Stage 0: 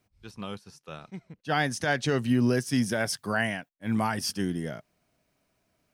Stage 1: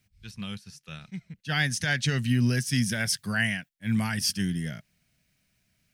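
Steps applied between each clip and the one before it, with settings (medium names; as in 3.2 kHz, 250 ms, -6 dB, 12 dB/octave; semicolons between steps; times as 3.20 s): high-order bell 590 Hz -14 dB 2.5 oct; trim +4.5 dB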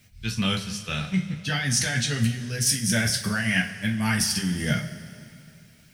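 compressor with a negative ratio -33 dBFS, ratio -1; two-slope reverb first 0.27 s, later 2.6 s, from -18 dB, DRR 0.5 dB; trim +6 dB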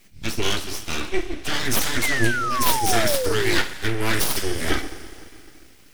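full-wave rectifier; painted sound fall, 2.02–3.58 s, 330–2200 Hz -30 dBFS; trim +5 dB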